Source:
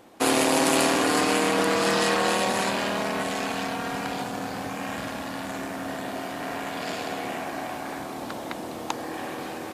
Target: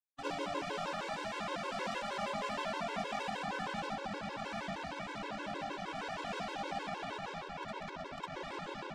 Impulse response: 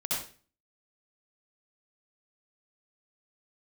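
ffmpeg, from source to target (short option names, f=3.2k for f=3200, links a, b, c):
-filter_complex "[0:a]bass=f=250:g=-4,treble=f=4k:g=-14,acompressor=threshold=-27dB:ratio=12,aresample=16000,acrusher=bits=4:mix=0:aa=0.5,aresample=44100,asoftclip=type=tanh:threshold=-31.5dB,acrossover=split=1100[a][b];[b]adynamicsmooth=sensitivity=4.5:basefreq=4.8k[c];[a][c]amix=inputs=2:normalize=0[d];[1:a]atrim=start_sample=2205,atrim=end_sample=3528[e];[d][e]afir=irnorm=-1:irlink=0,asetrate=48000,aresample=44100,afftfilt=real='re*gt(sin(2*PI*6.4*pts/sr)*(1-2*mod(floor(b*sr/1024/280),2)),0)':imag='im*gt(sin(2*PI*6.4*pts/sr)*(1-2*mod(floor(b*sr/1024/280),2)),0)':win_size=1024:overlap=0.75"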